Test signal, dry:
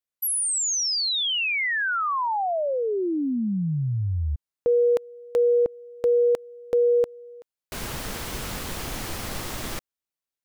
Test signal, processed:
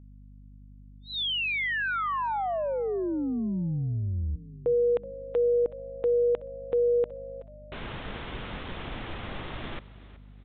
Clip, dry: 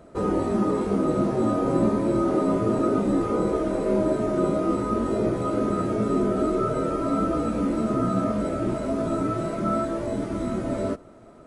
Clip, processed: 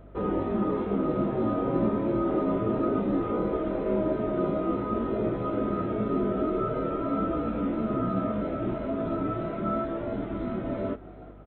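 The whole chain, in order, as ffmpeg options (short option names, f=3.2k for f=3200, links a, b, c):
-filter_complex "[0:a]aresample=8000,aresample=44100,aeval=exprs='val(0)+0.00631*(sin(2*PI*50*n/s)+sin(2*PI*2*50*n/s)/2+sin(2*PI*3*50*n/s)/3+sin(2*PI*4*50*n/s)/4+sin(2*PI*5*50*n/s)/5)':c=same,asplit=4[a][b][c][d];[b]adelay=374,afreqshift=62,volume=-18dB[e];[c]adelay=748,afreqshift=124,volume=-27.6dB[f];[d]adelay=1122,afreqshift=186,volume=-37.3dB[g];[a][e][f][g]amix=inputs=4:normalize=0,volume=-4dB"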